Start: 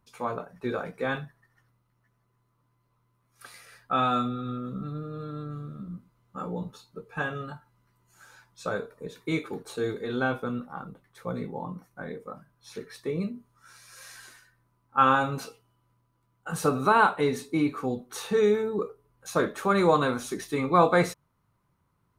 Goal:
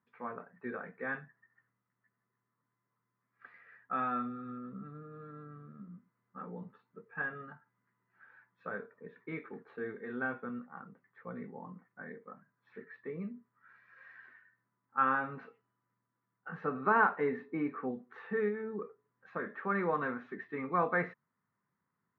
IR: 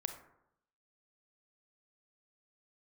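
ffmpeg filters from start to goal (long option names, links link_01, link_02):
-filter_complex "[0:a]asettb=1/sr,asplit=3[link_01][link_02][link_03];[link_01]atrim=end=16.864[link_04];[link_02]atrim=start=16.86:end=17.91,asetpts=PTS-STARTPTS,afade=type=in:duration=0.004:curve=qsin,afade=type=out:start_time=1.046:duration=0.004:curve=qsin,equalizer=frequency=520:width=0.45:gain=4.5[link_05];[link_03]atrim=start=17.906[link_06];[link_04][link_05]acrossfade=duration=0.004:curve1=hsin:curve2=qsin[link_07];[link_07][link_06]acrossfade=duration=0.004:curve1=qsin:curve2=hsin,asettb=1/sr,asplit=3[link_08][link_09][link_10];[link_08]atrim=end=18.484[link_11];[link_09]atrim=start=18.48:end=19.55,asetpts=PTS-STARTPTS,afade=type=in:duration=0.004:curve=qsin,afade=type=out:start_time=1.066:duration=0.004:curve=qsin,acompressor=threshold=-23dB:ratio=6[link_12];[link_10]atrim=start=19.546[link_13];[link_11][link_12]acrossfade=duration=0.004:curve1=hsin:curve2=qsin[link_14];[link_14][link_13]acrossfade=duration=0.004:curve1=qsin:curve2=hsin,highpass=190,equalizer=frequency=220:width_type=q:width=4:gain=5,equalizer=frequency=320:width_type=q:width=4:gain=-5,equalizer=frequency=590:width_type=q:width=4:gain=-5,equalizer=frequency=850:width_type=q:width=4:gain=-3,equalizer=frequency=1800:width_type=q:width=4:gain=10,lowpass=frequency=2100:width=0.5412,lowpass=frequency=2100:width=1.3066,volume=-9dB"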